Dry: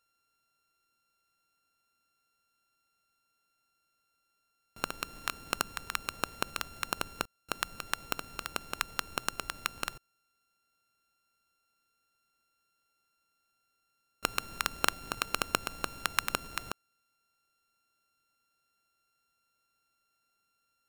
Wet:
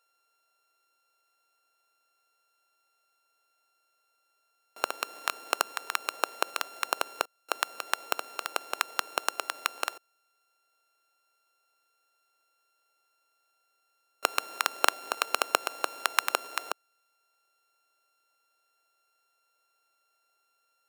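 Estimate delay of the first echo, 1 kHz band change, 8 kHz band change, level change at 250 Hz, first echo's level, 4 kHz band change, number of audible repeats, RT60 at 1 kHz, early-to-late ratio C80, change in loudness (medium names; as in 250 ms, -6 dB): no echo, +5.5 dB, +3.0 dB, -3.5 dB, no echo, +3.0 dB, no echo, no reverb, no reverb, +4.0 dB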